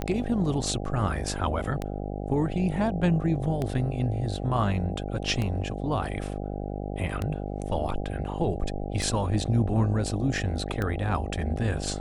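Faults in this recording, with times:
mains buzz 50 Hz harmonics 16 −33 dBFS
scratch tick 33 1/3 rpm −16 dBFS

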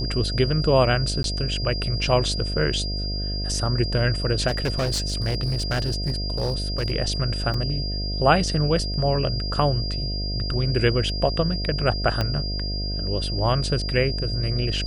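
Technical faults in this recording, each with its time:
mains buzz 50 Hz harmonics 14 −28 dBFS
whistle 4,800 Hz −30 dBFS
0:01.23–0:01.24: drop-out 12 ms
0:04.47–0:06.92: clipping −19.5 dBFS
0:07.54: drop-out 3.6 ms
0:12.21: click −10 dBFS

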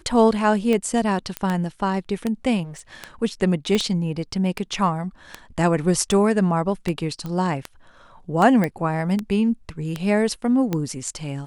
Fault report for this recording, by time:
scratch tick 78 rpm −11 dBFS
0:01.37: click −9 dBFS
0:02.63–0:03.07: clipping −33.5 dBFS
0:03.75: click −9 dBFS
0:07.26: click −19 dBFS
0:08.64: click −11 dBFS

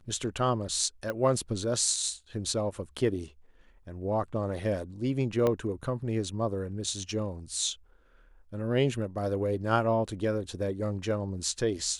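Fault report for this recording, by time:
0:01.10: click −20 dBFS
0:05.47: click −15 dBFS

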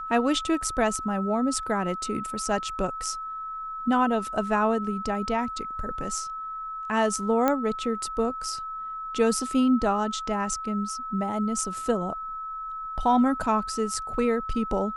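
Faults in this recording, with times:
whistle 1,300 Hz −32 dBFS
0:07.48: click −10 dBFS

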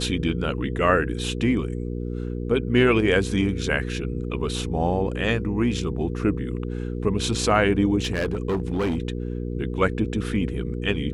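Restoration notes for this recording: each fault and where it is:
mains hum 60 Hz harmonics 8 −29 dBFS
0:08.00–0:08.98: clipping −20 dBFS

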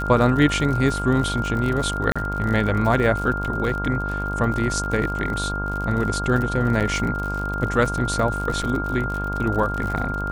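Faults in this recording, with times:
mains buzz 50 Hz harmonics 32 −28 dBFS
surface crackle 57 per second −27 dBFS
whistle 1,400 Hz −27 dBFS
0:02.12–0:02.16: drop-out 36 ms
0:06.80–0:06.81: drop-out 7.5 ms
0:08.62–0:08.63: drop-out 5.8 ms

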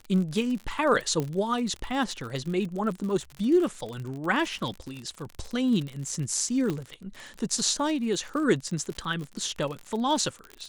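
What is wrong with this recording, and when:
surface crackle 55 per second −32 dBFS
0:01.20: click −16 dBFS
0:06.70: click −17 dBFS

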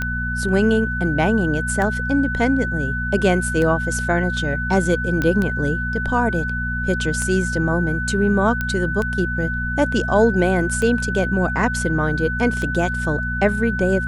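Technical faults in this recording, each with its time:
mains hum 60 Hz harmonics 4 −26 dBFS
scratch tick 33 1/3 rpm −11 dBFS
whistle 1,500 Hz −24 dBFS
0:05.22: click −9 dBFS
0:08.61: click −10 dBFS

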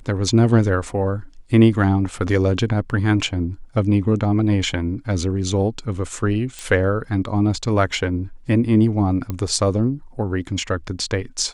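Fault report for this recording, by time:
0:06.59: click
0:09.30: click −13 dBFS

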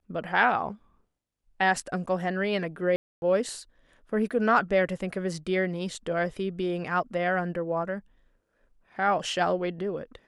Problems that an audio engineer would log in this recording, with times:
0:02.96–0:03.22: drop-out 261 ms

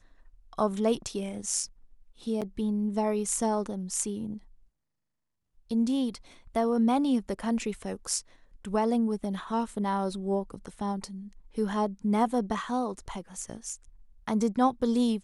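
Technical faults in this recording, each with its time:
0:02.41–0:02.42: drop-out 7.6 ms

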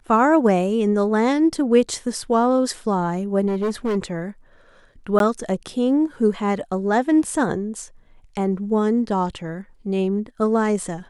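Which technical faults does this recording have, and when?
0:03.47–0:03.97: clipping −18.5 dBFS
0:05.19–0:05.20: drop-out 12 ms

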